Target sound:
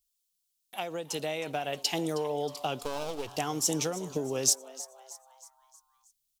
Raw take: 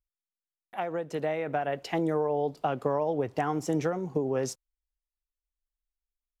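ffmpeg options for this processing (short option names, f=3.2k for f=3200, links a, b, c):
-filter_complex "[0:a]asettb=1/sr,asplit=3[a][b][c];[a]atrim=end=2.824[d];[b]atrim=start=2.82:end=3.37,asetpts=PTS-STARTPTS,afade=t=in:d=0.004:c=qsin,afade=t=out:st=0.546:d=0.004:c=qsin,aeval=exprs='if(lt(val(0),0),0.251*val(0),val(0))':c=same[e];[c]atrim=start=3.366[f];[d][e]acrossfade=d=0.004:c1=hsin:c2=qsin[g];[g][f]acrossfade=d=0.004:c1=qsin:c2=hsin,aexciter=amount=3.8:drive=9.5:freq=2.7k,asplit=6[h][i][j][k][l][m];[i]adelay=316,afreqshift=130,volume=-16.5dB[n];[j]adelay=632,afreqshift=260,volume=-22.3dB[o];[k]adelay=948,afreqshift=390,volume=-28.2dB[p];[l]adelay=1264,afreqshift=520,volume=-34dB[q];[m]adelay=1580,afreqshift=650,volume=-39.9dB[r];[h][n][o][p][q][r]amix=inputs=6:normalize=0,volume=-4dB"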